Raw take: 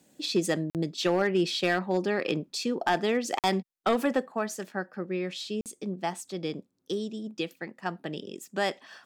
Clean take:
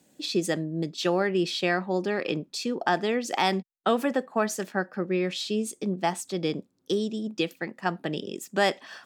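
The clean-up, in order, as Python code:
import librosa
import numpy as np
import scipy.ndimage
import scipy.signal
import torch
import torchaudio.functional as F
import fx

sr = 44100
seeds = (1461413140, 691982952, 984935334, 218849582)

y = fx.fix_declip(x, sr, threshold_db=-17.0)
y = fx.fix_interpolate(y, sr, at_s=(0.7, 3.39, 5.61), length_ms=48.0)
y = fx.gain(y, sr, db=fx.steps((0.0, 0.0), (4.32, 5.0)))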